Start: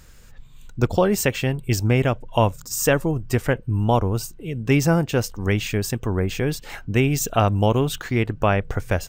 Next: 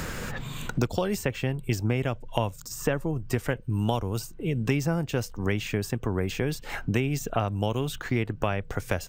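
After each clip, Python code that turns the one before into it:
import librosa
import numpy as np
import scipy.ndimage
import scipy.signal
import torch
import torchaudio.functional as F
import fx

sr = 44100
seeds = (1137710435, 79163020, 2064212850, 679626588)

y = fx.band_squash(x, sr, depth_pct=100)
y = y * librosa.db_to_amplitude(-8.0)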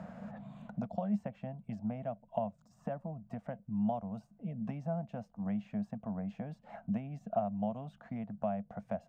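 y = fx.double_bandpass(x, sr, hz=370.0, octaves=1.7)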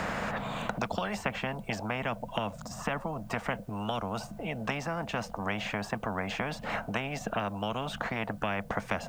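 y = fx.spectral_comp(x, sr, ratio=4.0)
y = y * librosa.db_to_amplitude(6.0)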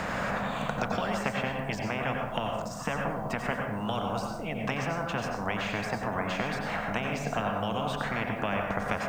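y = fx.rev_plate(x, sr, seeds[0], rt60_s=0.81, hf_ratio=0.45, predelay_ms=80, drr_db=1.0)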